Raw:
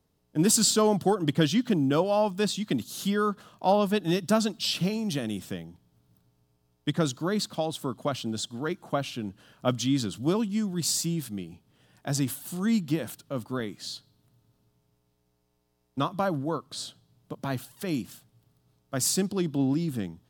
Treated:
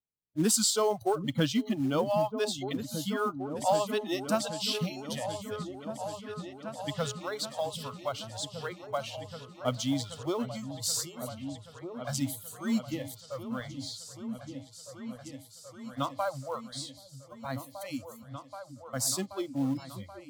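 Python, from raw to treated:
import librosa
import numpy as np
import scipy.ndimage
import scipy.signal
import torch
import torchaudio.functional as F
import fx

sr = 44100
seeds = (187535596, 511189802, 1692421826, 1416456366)

p1 = fx.noise_reduce_blind(x, sr, reduce_db=27)
p2 = fx.quant_float(p1, sr, bits=2)
p3 = p1 + (p2 * librosa.db_to_amplitude(-4.0))
p4 = fx.echo_opening(p3, sr, ms=779, hz=200, octaves=2, feedback_pct=70, wet_db=-6)
y = p4 * librosa.db_to_amplitude(-7.5)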